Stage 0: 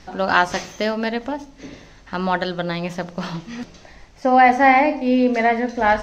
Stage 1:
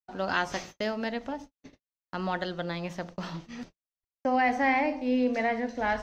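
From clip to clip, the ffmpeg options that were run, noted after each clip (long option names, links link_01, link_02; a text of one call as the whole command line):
ffmpeg -i in.wav -filter_complex "[0:a]agate=range=-59dB:threshold=-34dB:ratio=16:detection=peak,acrossover=split=540|1300[link_01][link_02][link_03];[link_02]alimiter=limit=-17.5dB:level=0:latency=1[link_04];[link_01][link_04][link_03]amix=inputs=3:normalize=0,volume=-9dB" out.wav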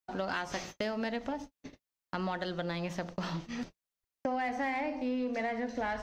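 ffmpeg -i in.wav -filter_complex "[0:a]asplit=2[link_01][link_02];[link_02]asoftclip=type=tanh:threshold=-28dB,volume=-5dB[link_03];[link_01][link_03]amix=inputs=2:normalize=0,acompressor=threshold=-30dB:ratio=6,volume=-1dB" out.wav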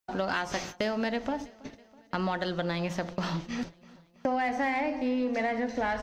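ffmpeg -i in.wav -af "aecho=1:1:326|652|978|1304:0.0794|0.0461|0.0267|0.0155,volume=4.5dB" out.wav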